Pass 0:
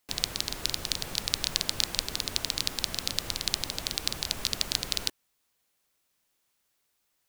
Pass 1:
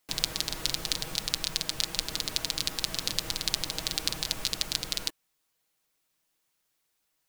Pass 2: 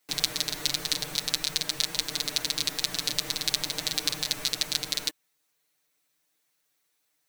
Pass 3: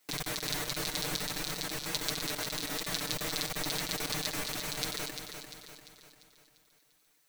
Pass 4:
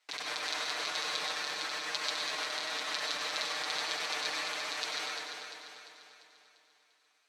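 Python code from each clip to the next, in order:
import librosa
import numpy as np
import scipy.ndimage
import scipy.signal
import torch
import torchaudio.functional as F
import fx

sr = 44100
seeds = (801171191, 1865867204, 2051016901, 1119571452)

y1 = x + 0.47 * np.pad(x, (int(6.3 * sr / 1000.0), 0))[:len(x)]
y1 = fx.rider(y1, sr, range_db=10, speed_s=0.5)
y1 = y1 * 10.0 ** (-1.0 / 20.0)
y2 = fx.low_shelf(y1, sr, hz=110.0, db=-11.5)
y2 = y2 + 0.83 * np.pad(y2, (int(6.8 * sr / 1000.0), 0))[:len(y2)]
y3 = fx.over_compress(y2, sr, threshold_db=-33.0, ratio=-0.5)
y3 = fx.echo_feedback(y3, sr, ms=346, feedback_pct=49, wet_db=-7.5)
y3 = y3 * 10.0 ** (-1.0 / 20.0)
y4 = fx.bandpass_edges(y3, sr, low_hz=710.0, high_hz=4800.0)
y4 = fx.rev_plate(y4, sr, seeds[0], rt60_s=1.4, hf_ratio=0.55, predelay_ms=85, drr_db=-2.0)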